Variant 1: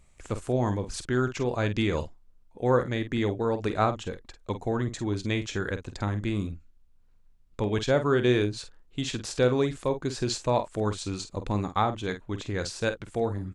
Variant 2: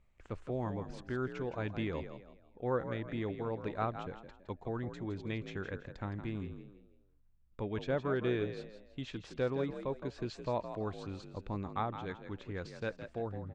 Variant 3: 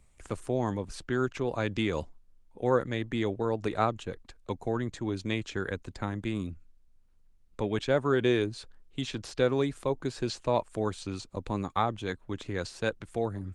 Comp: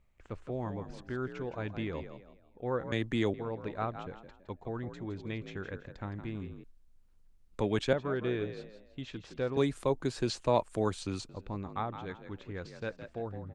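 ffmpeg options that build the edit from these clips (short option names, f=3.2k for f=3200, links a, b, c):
-filter_complex "[2:a]asplit=3[a][b][c];[1:a]asplit=4[d][e][f][g];[d]atrim=end=2.922[h];[a]atrim=start=2.918:end=3.342[i];[e]atrim=start=3.338:end=6.642[j];[b]atrim=start=6.638:end=7.932[k];[f]atrim=start=7.928:end=9.572[l];[c]atrim=start=9.568:end=11.292[m];[g]atrim=start=11.288[n];[h][i]acrossfade=d=0.004:c1=hsin:c2=hsin[o];[o][j]acrossfade=d=0.004:c1=hsin:c2=hsin[p];[p][k]acrossfade=d=0.004:c1=hsin:c2=hsin[q];[q][l]acrossfade=d=0.004:c1=hsin:c2=hsin[r];[r][m]acrossfade=d=0.004:c1=hsin:c2=hsin[s];[s][n]acrossfade=d=0.004:c1=hsin:c2=hsin"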